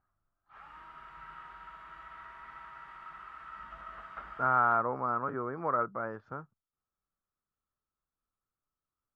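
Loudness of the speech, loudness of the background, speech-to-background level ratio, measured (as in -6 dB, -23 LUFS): -30.5 LUFS, -47.5 LUFS, 17.0 dB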